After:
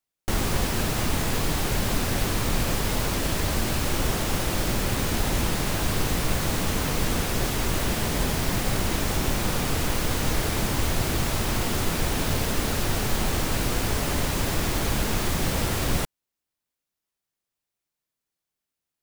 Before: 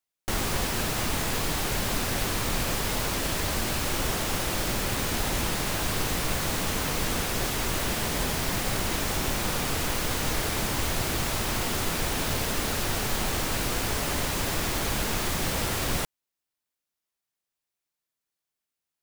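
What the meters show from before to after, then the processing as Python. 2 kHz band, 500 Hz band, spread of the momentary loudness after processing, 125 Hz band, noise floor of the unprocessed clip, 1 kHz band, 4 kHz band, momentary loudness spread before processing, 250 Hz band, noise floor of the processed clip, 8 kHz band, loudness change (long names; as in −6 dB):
+0.5 dB, +2.5 dB, 0 LU, +5.0 dB, below −85 dBFS, +1.0 dB, 0.0 dB, 0 LU, +4.0 dB, below −85 dBFS, 0.0 dB, +1.5 dB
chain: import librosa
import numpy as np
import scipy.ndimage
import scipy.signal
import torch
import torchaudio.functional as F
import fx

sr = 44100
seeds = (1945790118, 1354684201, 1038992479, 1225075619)

y = fx.low_shelf(x, sr, hz=430.0, db=5.5)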